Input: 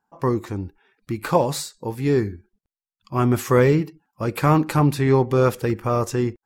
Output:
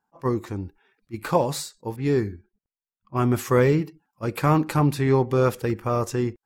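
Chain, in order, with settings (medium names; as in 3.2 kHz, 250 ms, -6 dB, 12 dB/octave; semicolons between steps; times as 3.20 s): 1.96–3.17 s: level-controlled noise filter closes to 1.1 kHz, open at -19.5 dBFS; attacks held to a fixed rise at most 580 dB/s; trim -2.5 dB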